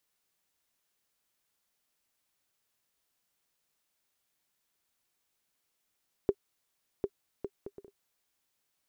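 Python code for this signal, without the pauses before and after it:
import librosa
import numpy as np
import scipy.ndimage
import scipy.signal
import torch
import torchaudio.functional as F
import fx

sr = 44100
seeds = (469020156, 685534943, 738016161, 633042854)

y = fx.bouncing_ball(sr, first_gap_s=0.75, ratio=0.54, hz=399.0, decay_ms=56.0, level_db=-14.5)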